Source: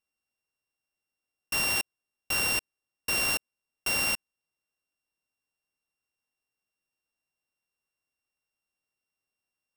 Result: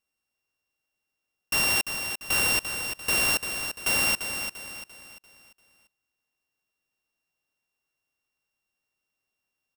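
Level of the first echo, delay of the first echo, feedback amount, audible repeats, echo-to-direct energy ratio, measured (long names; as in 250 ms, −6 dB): −8.0 dB, 344 ms, 40%, 4, −7.0 dB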